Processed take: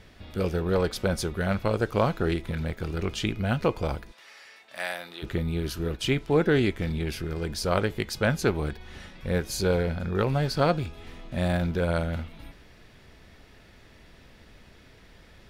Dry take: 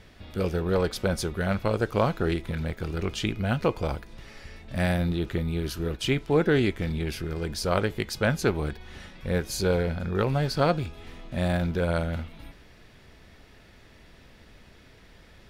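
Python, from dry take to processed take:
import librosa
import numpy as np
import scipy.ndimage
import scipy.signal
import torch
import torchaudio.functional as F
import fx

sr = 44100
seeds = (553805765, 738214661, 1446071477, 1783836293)

y = fx.highpass(x, sr, hz=810.0, slope=12, at=(4.11, 5.22), fade=0.02)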